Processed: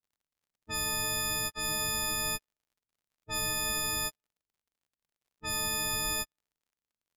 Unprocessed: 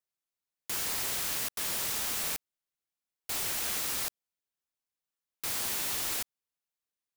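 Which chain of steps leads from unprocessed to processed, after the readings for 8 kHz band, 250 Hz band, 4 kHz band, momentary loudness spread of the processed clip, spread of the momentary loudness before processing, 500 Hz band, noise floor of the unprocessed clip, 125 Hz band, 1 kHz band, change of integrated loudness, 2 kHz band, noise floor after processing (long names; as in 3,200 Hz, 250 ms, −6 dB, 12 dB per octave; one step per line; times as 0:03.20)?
+1.0 dB, +5.5 dB, +3.5 dB, 7 LU, 8 LU, +4.5 dB, below −85 dBFS, +8.5 dB, +4.5 dB, +0.5 dB, +4.5 dB, below −85 dBFS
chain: every partial snapped to a pitch grid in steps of 6 semitones
RIAA equalisation playback
low-pass that shuts in the quiet parts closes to 350 Hz, open at −26.5 dBFS
in parallel at −5 dB: dead-zone distortion −48.5 dBFS
on the sum: surface crackle 58 per second −58 dBFS
level −5.5 dB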